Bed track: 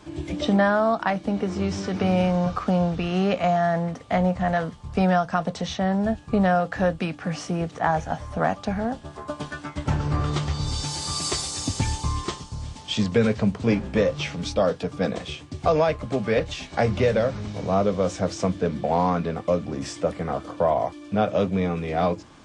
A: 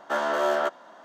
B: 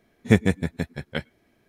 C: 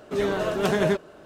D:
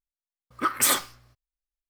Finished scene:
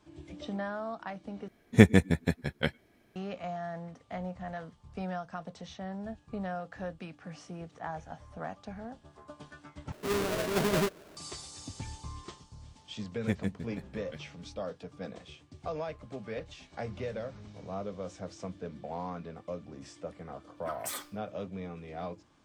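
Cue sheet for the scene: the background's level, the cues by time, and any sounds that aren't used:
bed track -16.5 dB
1.48 s: replace with B -0.5 dB
9.92 s: replace with C -10 dB + square wave that keeps the level
12.97 s: add B -14.5 dB + rotary cabinet horn 8 Hz
20.04 s: add D -17 dB
not used: A

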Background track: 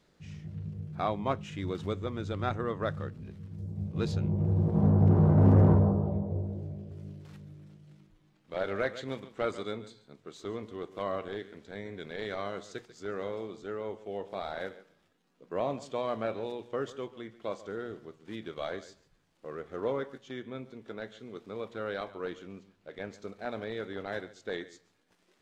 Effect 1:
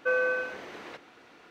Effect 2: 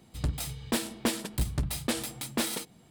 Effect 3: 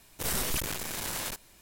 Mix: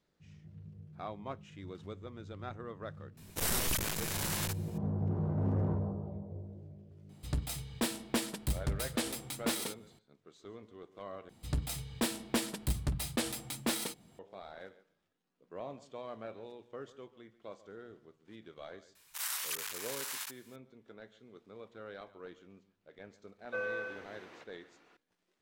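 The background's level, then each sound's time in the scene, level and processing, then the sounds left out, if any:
background track -11.5 dB
3.17 s: add 3 -1.5 dB
7.09 s: add 2 -4 dB
11.29 s: replace with 2 -3.5 dB
18.95 s: add 3 -5 dB + high-pass 980 Hz 24 dB/octave
23.47 s: add 1 -10.5 dB

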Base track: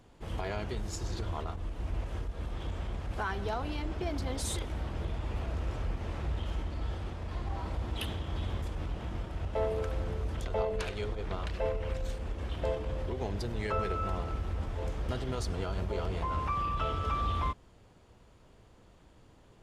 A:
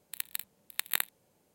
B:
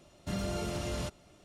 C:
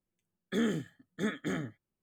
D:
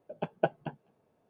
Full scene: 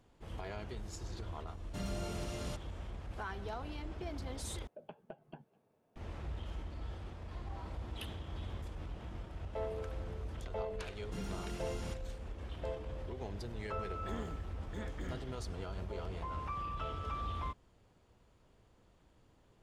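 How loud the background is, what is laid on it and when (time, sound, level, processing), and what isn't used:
base track -8 dB
1.47 s: add B -6 dB
4.67 s: replace with D -3.5 dB + compression 12:1, threshold -40 dBFS
10.85 s: add B -7.5 dB + comb of notches 600 Hz
13.54 s: add C -5.5 dB + compression 1.5:1, threshold -50 dBFS
not used: A

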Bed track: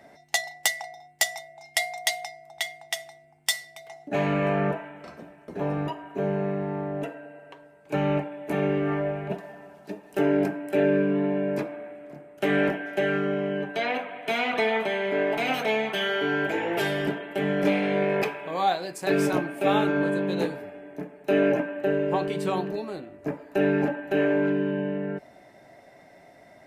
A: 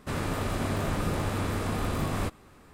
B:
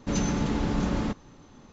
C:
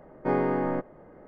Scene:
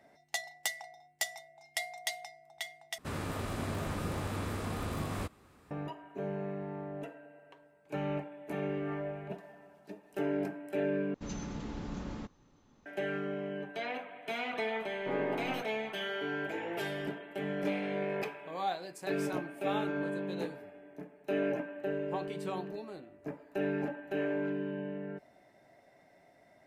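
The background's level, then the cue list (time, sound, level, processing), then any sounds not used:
bed track -10.5 dB
2.98 s: replace with A -6.5 dB + high-pass 43 Hz
11.14 s: replace with B -13.5 dB
14.81 s: add C -11.5 dB

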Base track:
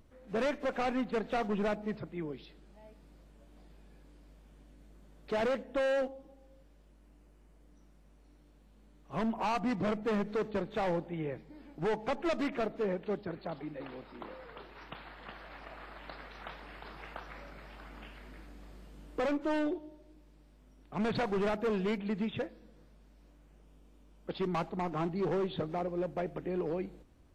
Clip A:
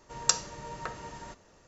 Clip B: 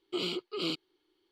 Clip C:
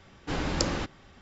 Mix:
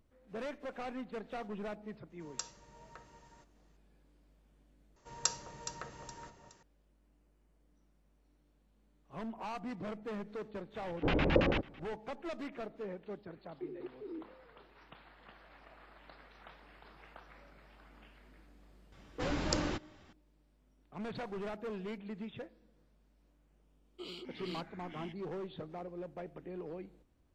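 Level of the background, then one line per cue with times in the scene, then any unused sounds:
base track -9.5 dB
2.10 s: add A -16.5 dB
4.96 s: replace with A -8 dB + echo whose repeats swap between lows and highs 209 ms, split 980 Hz, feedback 57%, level -6.5 dB
10.75 s: add C -1 dB + LFO low-pass square 9.1 Hz 530–2700 Hz
13.48 s: add B -8 dB + FFT band-pass 230–490 Hz
18.92 s: add C -6 dB
23.86 s: add B -13 dB + ever faster or slower copies 206 ms, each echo -6 st, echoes 2, each echo -6 dB

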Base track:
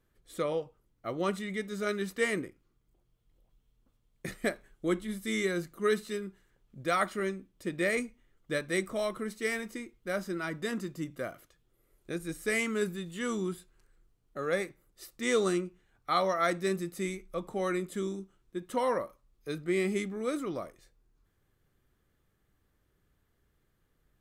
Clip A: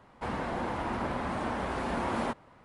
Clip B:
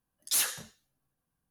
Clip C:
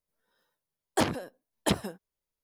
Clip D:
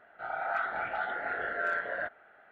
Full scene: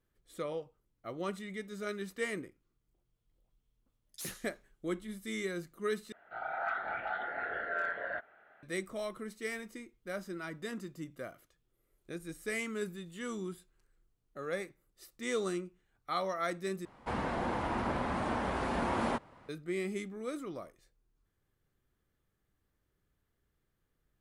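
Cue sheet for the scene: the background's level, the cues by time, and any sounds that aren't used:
base track -6.5 dB
3.87 s: add B -16.5 dB
6.12 s: replace with D -3.5 dB
16.85 s: replace with A -1 dB
not used: C

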